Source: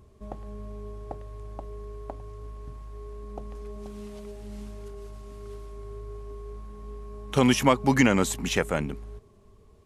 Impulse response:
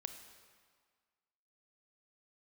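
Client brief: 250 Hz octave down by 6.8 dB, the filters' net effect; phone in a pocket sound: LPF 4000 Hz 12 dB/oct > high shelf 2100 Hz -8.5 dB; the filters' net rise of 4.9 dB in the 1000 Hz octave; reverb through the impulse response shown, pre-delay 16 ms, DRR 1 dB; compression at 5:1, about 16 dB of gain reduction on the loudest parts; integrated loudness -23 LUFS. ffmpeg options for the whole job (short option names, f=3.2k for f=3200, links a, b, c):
-filter_complex "[0:a]equalizer=f=250:t=o:g=-8,equalizer=f=1k:t=o:g=8,acompressor=threshold=-29dB:ratio=5,asplit=2[a][b];[1:a]atrim=start_sample=2205,adelay=16[c];[b][c]afir=irnorm=-1:irlink=0,volume=2dB[d];[a][d]amix=inputs=2:normalize=0,lowpass=4k,highshelf=f=2.1k:g=-8.5,volume=15.5dB"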